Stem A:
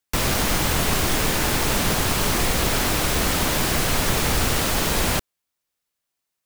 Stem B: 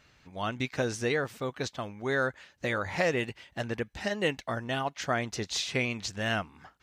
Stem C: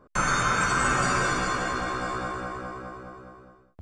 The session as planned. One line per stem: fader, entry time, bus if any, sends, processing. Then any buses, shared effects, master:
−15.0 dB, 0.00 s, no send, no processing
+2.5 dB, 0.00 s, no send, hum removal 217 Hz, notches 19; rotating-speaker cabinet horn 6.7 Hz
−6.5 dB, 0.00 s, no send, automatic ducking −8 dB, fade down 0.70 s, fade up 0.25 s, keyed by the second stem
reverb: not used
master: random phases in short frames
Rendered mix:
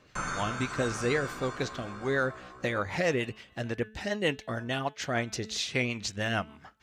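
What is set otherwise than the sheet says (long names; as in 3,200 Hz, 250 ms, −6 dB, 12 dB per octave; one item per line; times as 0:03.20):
stem A: muted
master: missing random phases in short frames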